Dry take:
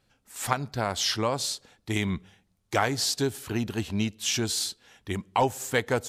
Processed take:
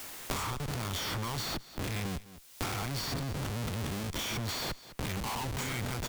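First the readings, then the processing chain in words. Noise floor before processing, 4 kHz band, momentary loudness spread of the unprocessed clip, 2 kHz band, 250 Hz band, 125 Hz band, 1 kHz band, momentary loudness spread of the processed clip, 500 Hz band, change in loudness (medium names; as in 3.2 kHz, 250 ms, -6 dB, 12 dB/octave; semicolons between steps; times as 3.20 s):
-71 dBFS, -6.5 dB, 10 LU, -6.5 dB, -7.5 dB, -2.0 dB, -8.5 dB, 4 LU, -11.5 dB, -7.0 dB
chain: reverse spectral sustain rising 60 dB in 0.40 s; expander -47 dBFS; low-pass 6.1 kHz 12 dB/octave; peaking EQ 390 Hz -6 dB 1.3 oct; comb 0.9 ms, depth 87%; compression 5:1, threshold -29 dBFS, peak gain reduction 13 dB; Schmitt trigger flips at -37.5 dBFS; added noise white -70 dBFS; delay 206 ms -20.5 dB; three bands compressed up and down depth 100%; trim -1.5 dB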